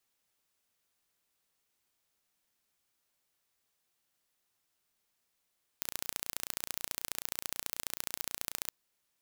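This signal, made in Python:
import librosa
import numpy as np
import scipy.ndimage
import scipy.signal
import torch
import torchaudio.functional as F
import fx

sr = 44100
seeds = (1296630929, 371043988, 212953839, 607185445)

y = fx.impulse_train(sr, length_s=2.88, per_s=29.3, accent_every=2, level_db=-6.5)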